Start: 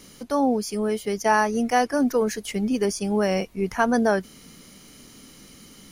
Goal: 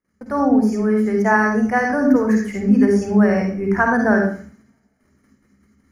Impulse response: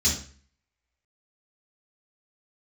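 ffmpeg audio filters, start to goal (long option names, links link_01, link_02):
-filter_complex "[0:a]agate=range=-35dB:threshold=-44dB:ratio=16:detection=peak,highshelf=frequency=2400:width_type=q:width=3:gain=-11,asplit=2[link_01][link_02];[1:a]atrim=start_sample=2205,adelay=47[link_03];[link_02][link_03]afir=irnorm=-1:irlink=0,volume=-12dB[link_04];[link_01][link_04]amix=inputs=2:normalize=0"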